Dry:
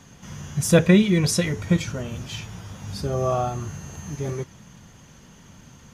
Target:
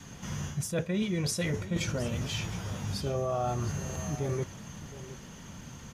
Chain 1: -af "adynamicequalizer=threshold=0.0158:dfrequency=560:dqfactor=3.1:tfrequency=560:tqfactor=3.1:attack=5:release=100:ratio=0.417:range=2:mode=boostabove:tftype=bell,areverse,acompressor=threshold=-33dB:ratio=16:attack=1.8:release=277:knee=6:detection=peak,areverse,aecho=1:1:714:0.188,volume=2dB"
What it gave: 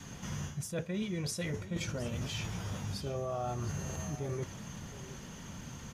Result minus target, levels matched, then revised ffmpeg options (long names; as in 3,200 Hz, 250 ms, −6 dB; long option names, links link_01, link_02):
downward compressor: peak gain reduction +5.5 dB
-af "adynamicequalizer=threshold=0.0158:dfrequency=560:dqfactor=3.1:tfrequency=560:tqfactor=3.1:attack=5:release=100:ratio=0.417:range=2:mode=boostabove:tftype=bell,areverse,acompressor=threshold=-27dB:ratio=16:attack=1.8:release=277:knee=6:detection=peak,areverse,aecho=1:1:714:0.188,volume=2dB"